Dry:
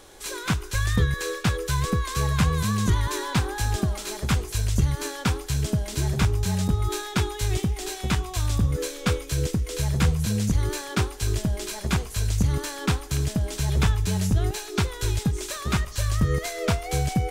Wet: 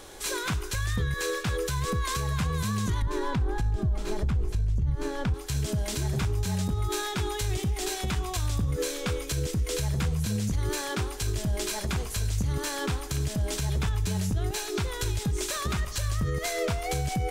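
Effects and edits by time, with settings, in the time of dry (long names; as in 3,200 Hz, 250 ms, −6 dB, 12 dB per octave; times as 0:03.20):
0:03.02–0:05.34: spectral tilt −3.5 dB per octave
whole clip: downward compressor 2 to 1, threshold −25 dBFS; brickwall limiter −23 dBFS; level +3 dB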